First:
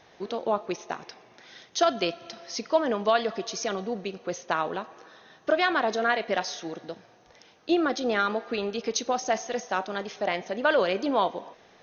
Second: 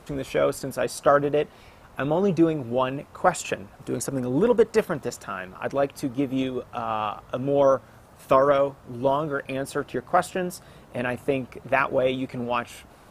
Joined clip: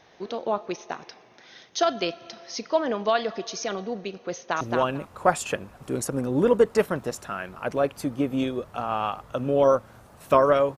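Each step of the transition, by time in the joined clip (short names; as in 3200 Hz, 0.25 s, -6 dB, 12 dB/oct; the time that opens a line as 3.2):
first
4.34–4.61 echo throw 0.22 s, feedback 15%, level -3 dB
4.61 switch to second from 2.6 s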